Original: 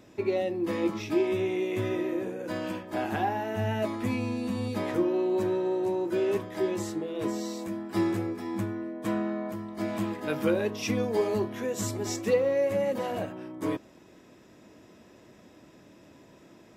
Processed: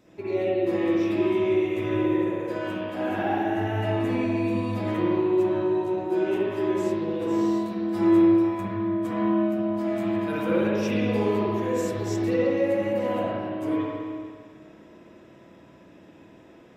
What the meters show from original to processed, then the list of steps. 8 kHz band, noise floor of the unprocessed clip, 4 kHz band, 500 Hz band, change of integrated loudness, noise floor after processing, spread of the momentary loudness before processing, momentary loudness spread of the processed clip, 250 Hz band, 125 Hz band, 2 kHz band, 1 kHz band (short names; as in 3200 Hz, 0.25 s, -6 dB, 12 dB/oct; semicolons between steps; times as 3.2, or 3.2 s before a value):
n/a, -55 dBFS, +0.5 dB, +3.5 dB, +5.0 dB, -51 dBFS, 7 LU, 6 LU, +6.5 dB, +4.0 dB, +3.0 dB, +4.0 dB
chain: spring tank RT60 2 s, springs 51/57 ms, chirp 80 ms, DRR -8.5 dB; gain -6 dB